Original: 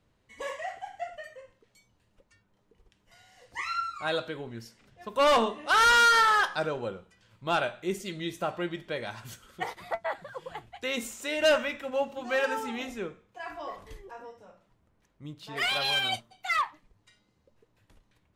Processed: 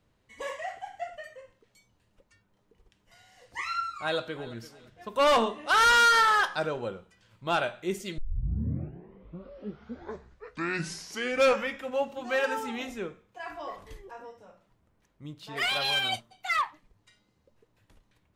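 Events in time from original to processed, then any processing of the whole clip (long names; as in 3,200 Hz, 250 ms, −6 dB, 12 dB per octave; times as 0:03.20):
0:03.96–0:04.55: delay throw 340 ms, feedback 25%, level −16.5 dB
0:08.18: tape start 3.78 s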